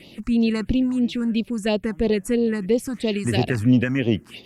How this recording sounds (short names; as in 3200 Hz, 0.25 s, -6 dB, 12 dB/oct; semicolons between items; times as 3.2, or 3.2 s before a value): phasing stages 4, 3 Hz, lowest notch 530–1600 Hz